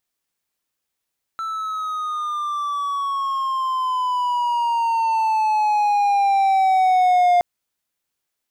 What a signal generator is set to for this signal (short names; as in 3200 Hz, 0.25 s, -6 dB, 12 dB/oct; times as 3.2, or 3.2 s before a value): gliding synth tone triangle, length 6.02 s, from 1330 Hz, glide -11 st, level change +12 dB, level -10 dB